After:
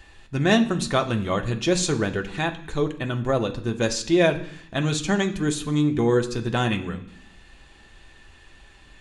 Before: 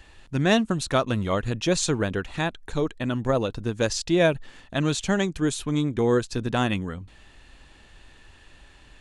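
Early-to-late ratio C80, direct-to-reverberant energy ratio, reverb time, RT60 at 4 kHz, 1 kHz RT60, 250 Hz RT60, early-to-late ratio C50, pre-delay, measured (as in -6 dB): 16.5 dB, 4.0 dB, 0.65 s, 0.85 s, 0.65 s, 0.90 s, 13.5 dB, 3 ms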